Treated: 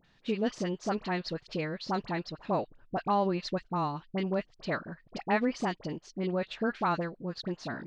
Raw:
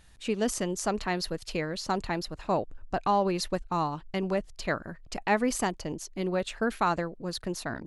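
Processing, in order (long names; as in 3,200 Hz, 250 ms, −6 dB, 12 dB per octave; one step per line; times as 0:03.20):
low-pass filter 4,900 Hz 24 dB per octave
low shelf with overshoot 100 Hz −12 dB, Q 1.5
all-pass dispersion highs, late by 45 ms, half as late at 1,300 Hz
level −3 dB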